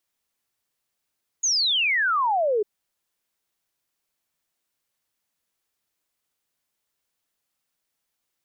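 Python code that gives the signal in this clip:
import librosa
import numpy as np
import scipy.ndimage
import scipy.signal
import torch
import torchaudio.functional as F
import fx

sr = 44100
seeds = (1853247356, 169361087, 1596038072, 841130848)

y = fx.ess(sr, length_s=1.2, from_hz=6800.0, to_hz=400.0, level_db=-19.0)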